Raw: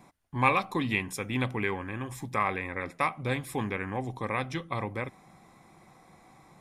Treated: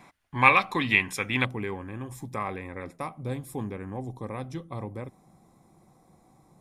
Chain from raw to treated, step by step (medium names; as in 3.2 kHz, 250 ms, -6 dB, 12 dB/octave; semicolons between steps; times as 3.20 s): peaking EQ 2.2 kHz +8.5 dB 2.3 oct, from 1.45 s -8 dB, from 2.96 s -14 dB